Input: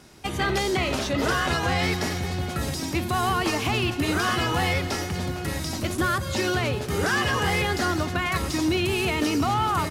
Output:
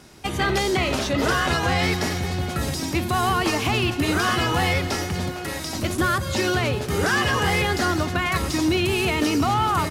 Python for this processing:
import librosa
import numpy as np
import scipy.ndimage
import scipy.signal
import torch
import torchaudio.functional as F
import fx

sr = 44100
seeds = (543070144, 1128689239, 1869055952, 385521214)

y = fx.bass_treble(x, sr, bass_db=-9, treble_db=-1, at=(5.29, 5.75))
y = y * librosa.db_to_amplitude(2.5)